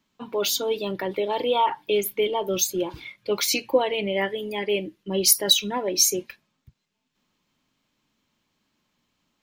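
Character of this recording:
background noise floor −76 dBFS
spectral slope −2.0 dB per octave

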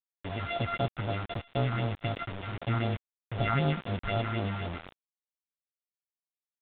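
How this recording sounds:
a buzz of ramps at a fixed pitch in blocks of 64 samples
phaser sweep stages 4, 3.9 Hz, lowest notch 480–2,300 Hz
a quantiser's noise floor 6 bits, dither none
mu-law

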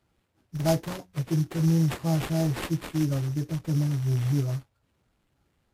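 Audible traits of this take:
a buzz of ramps at a fixed pitch in blocks of 8 samples
phaser sweep stages 2, 3 Hz, lowest notch 760–4,000 Hz
aliases and images of a low sample rate 5,800 Hz, jitter 20%
Ogg Vorbis

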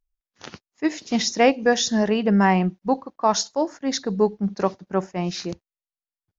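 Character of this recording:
background noise floor −95 dBFS
spectral slope −4.5 dB per octave

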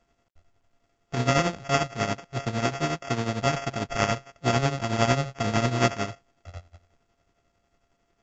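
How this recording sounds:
a buzz of ramps at a fixed pitch in blocks of 64 samples
tremolo triangle 11 Hz, depth 75%
aliases and images of a low sample rate 4,000 Hz, jitter 0%
mu-law

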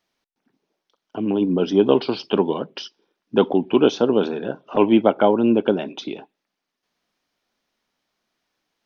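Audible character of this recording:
background noise floor −82 dBFS
spectral slope −5.0 dB per octave

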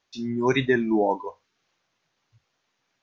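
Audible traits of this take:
background noise floor −76 dBFS
spectral slope −4.5 dB per octave

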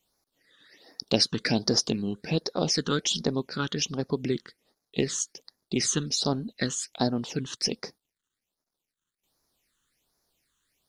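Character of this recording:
phaser sweep stages 8, 1.3 Hz, lowest notch 660–2,900 Hz

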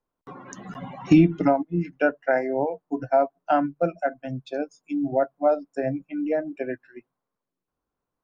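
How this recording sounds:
background noise floor −86 dBFS
spectral slope −4.0 dB per octave

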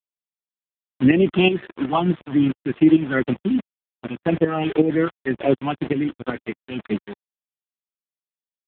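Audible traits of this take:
phaser sweep stages 6, 1.9 Hz, lowest notch 490–1,100 Hz
a quantiser's noise floor 6 bits, dither none
tremolo saw up 2.7 Hz, depth 70%
AMR narrowband

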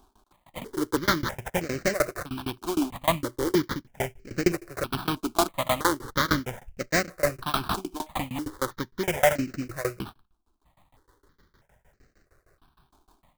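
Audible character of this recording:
tremolo saw down 6.5 Hz, depth 100%
aliases and images of a low sample rate 2,700 Hz, jitter 20%
notches that jump at a steady rate 3.1 Hz 520–3,400 Hz

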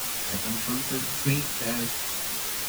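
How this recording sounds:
chopped level 0.99 Hz, depth 65%, duty 40%
a quantiser's noise floor 6 bits, dither triangular
a shimmering, thickened sound

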